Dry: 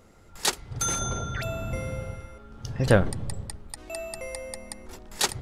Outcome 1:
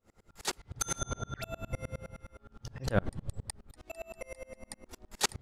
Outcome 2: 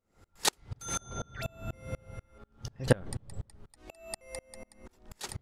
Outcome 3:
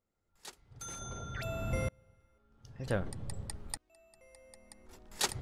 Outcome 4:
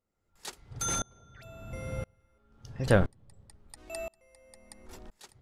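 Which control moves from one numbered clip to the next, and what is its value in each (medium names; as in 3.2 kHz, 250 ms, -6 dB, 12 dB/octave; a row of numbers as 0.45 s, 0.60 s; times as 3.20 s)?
sawtooth tremolo in dB, rate: 9.7 Hz, 4.1 Hz, 0.53 Hz, 0.98 Hz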